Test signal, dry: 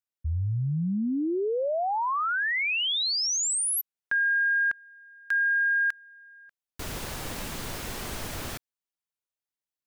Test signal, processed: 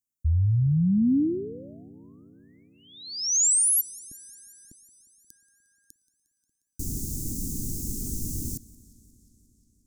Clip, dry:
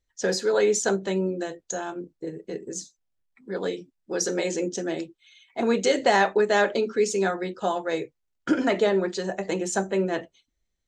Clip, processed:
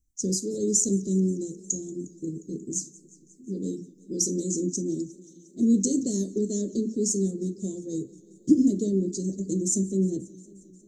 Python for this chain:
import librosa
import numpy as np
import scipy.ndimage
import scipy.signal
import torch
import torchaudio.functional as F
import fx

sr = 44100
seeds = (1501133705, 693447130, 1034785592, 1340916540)

y = scipy.signal.sosfilt(scipy.signal.ellip(3, 1.0, 50, [290.0, 6500.0], 'bandstop', fs=sr, output='sos'), x)
y = fx.echo_warbled(y, sr, ms=178, feedback_pct=76, rate_hz=2.8, cents=105, wet_db=-22.5)
y = y * librosa.db_to_amplitude(6.5)